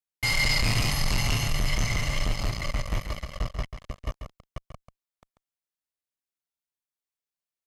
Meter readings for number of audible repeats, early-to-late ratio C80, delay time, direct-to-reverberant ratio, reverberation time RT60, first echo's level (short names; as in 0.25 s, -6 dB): 1, none, 0.14 s, none, none, -9.0 dB